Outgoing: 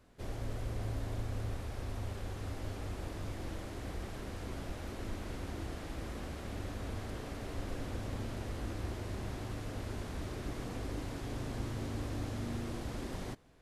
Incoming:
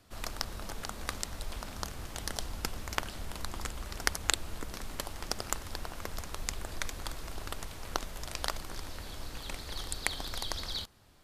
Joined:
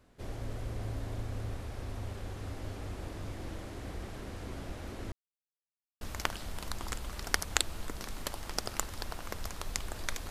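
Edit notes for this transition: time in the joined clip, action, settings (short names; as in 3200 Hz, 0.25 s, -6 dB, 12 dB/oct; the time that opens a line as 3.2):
outgoing
5.12–6.01 mute
6.01 switch to incoming from 2.74 s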